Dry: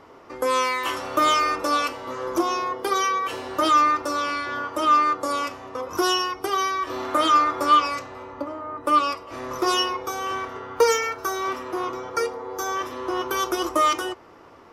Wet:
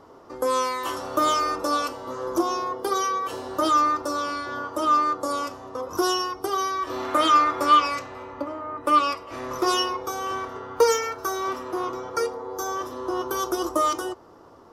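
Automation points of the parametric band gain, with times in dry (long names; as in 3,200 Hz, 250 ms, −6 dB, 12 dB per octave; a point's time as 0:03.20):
parametric band 2,300 Hz 0.92 octaves
0:06.63 −11.5 dB
0:07.09 +0.5 dB
0:09.34 +0.5 dB
0:09.92 −6.5 dB
0:12.23 −6.5 dB
0:12.74 −14 dB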